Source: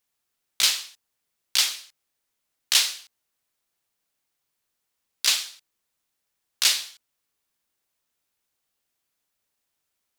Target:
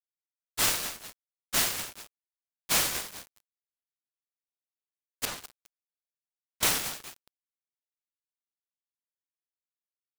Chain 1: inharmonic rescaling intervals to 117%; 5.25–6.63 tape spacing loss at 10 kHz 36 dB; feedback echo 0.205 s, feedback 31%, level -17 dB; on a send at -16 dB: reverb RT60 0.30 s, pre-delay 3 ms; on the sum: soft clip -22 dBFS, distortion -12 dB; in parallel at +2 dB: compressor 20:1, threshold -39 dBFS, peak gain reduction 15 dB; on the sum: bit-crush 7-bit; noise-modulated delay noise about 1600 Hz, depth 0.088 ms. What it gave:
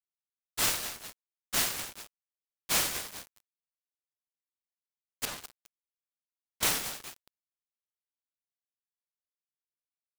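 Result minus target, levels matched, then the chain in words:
compressor: peak gain reduction +7.5 dB
inharmonic rescaling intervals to 117%; 5.25–6.63 tape spacing loss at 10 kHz 36 dB; feedback echo 0.205 s, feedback 31%, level -17 dB; on a send at -16 dB: reverb RT60 0.30 s, pre-delay 3 ms; on the sum: soft clip -22 dBFS, distortion -12 dB; in parallel at +2 dB: compressor 20:1, threshold -31 dBFS, peak gain reduction 7 dB; on the sum: bit-crush 7-bit; noise-modulated delay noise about 1600 Hz, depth 0.088 ms

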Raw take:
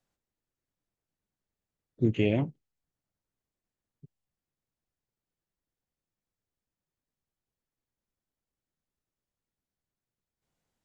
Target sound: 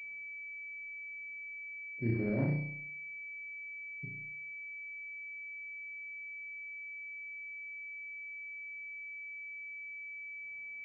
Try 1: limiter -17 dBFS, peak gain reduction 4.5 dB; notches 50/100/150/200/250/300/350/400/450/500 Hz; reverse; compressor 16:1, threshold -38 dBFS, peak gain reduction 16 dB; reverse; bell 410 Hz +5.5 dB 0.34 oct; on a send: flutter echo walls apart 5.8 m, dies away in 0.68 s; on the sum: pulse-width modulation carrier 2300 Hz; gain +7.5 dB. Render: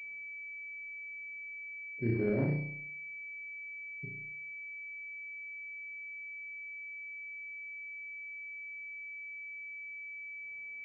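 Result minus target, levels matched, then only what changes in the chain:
500 Hz band +4.0 dB
change: bell 410 Hz -2 dB 0.34 oct

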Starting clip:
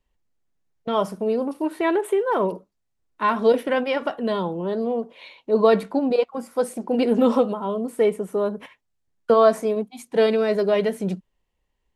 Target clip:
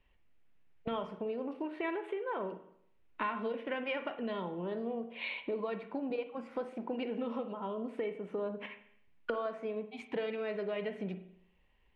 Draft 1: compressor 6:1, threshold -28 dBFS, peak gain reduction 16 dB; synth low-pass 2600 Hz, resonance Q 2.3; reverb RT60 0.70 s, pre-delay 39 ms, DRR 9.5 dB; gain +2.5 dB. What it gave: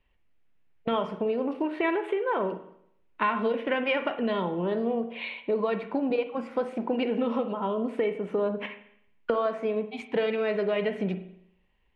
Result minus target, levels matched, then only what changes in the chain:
compressor: peak gain reduction -9.5 dB
change: compressor 6:1, threshold -39.5 dBFS, peak gain reduction 25.5 dB

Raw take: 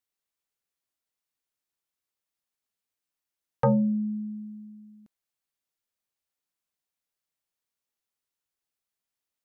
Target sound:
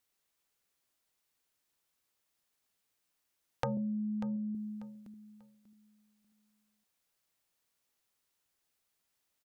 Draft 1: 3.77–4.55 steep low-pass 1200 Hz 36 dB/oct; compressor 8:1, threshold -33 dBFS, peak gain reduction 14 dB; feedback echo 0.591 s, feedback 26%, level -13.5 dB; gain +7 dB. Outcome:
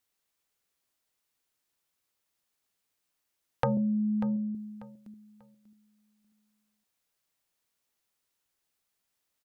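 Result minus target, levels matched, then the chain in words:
compressor: peak gain reduction -7 dB
3.77–4.55 steep low-pass 1200 Hz 36 dB/oct; compressor 8:1, threshold -41 dBFS, peak gain reduction 21 dB; feedback echo 0.591 s, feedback 26%, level -13.5 dB; gain +7 dB

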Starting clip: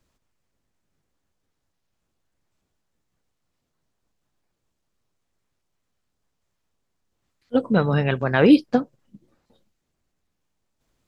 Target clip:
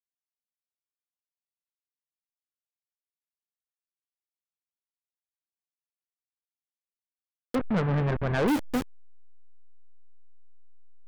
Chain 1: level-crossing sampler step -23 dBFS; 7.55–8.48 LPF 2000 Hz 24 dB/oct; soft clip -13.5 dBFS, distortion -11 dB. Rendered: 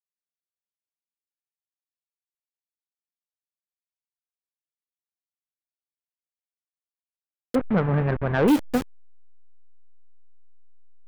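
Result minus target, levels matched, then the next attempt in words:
soft clip: distortion -6 dB
level-crossing sampler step -23 dBFS; 7.55–8.48 LPF 2000 Hz 24 dB/oct; soft clip -21.5 dBFS, distortion -5 dB

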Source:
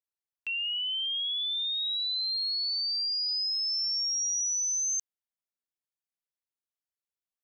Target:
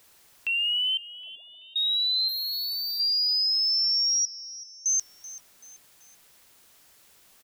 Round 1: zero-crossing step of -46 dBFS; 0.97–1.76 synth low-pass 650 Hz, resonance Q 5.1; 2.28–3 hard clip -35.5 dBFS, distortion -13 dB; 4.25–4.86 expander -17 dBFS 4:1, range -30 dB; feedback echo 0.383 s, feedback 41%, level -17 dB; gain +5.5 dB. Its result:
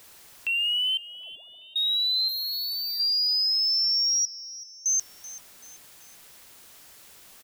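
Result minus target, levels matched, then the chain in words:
zero-crossing step: distortion +7 dB
zero-crossing step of -53 dBFS; 0.97–1.76 synth low-pass 650 Hz, resonance Q 5.1; 2.28–3 hard clip -35.5 dBFS, distortion -13 dB; 4.25–4.86 expander -17 dBFS 4:1, range -30 dB; feedback echo 0.383 s, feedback 41%, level -17 dB; gain +5.5 dB

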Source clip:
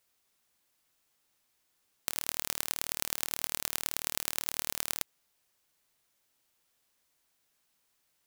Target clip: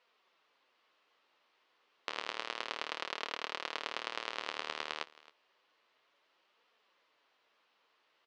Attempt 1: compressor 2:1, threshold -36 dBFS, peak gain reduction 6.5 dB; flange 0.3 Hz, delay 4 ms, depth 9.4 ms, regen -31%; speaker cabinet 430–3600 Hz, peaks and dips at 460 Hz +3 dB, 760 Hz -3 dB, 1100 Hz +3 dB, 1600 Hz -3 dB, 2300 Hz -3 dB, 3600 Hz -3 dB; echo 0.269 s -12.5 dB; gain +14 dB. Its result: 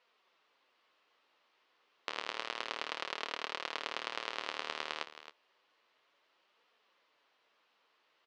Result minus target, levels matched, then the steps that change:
echo-to-direct +8 dB
change: echo 0.269 s -20.5 dB

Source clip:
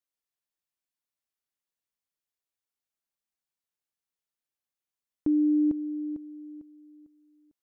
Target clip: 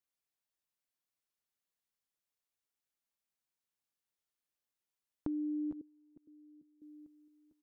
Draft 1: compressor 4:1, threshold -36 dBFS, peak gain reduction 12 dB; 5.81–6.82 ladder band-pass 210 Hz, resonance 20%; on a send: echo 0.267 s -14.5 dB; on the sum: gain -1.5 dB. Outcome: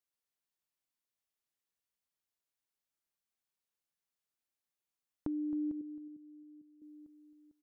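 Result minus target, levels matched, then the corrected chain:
echo 0.195 s early
compressor 4:1, threshold -36 dBFS, peak gain reduction 12 dB; 5.81–6.82 ladder band-pass 210 Hz, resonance 20%; on a send: echo 0.462 s -14.5 dB; on the sum: gain -1.5 dB

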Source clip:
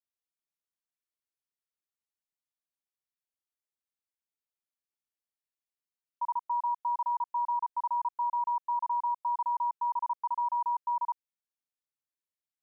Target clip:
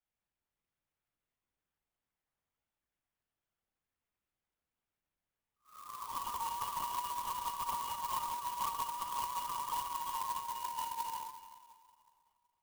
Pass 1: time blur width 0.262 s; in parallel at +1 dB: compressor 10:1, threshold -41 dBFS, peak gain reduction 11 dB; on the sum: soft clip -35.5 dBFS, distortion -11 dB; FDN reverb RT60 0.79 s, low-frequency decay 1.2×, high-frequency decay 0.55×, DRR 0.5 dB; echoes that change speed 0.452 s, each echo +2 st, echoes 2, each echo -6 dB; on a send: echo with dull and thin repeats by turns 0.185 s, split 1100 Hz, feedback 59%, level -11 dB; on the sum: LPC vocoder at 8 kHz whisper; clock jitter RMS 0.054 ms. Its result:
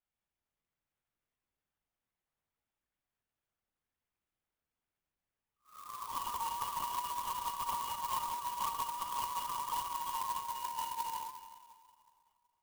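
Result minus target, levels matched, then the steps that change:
compressor: peak gain reduction -6.5 dB
change: compressor 10:1, threshold -48.5 dBFS, peak gain reduction 17.5 dB

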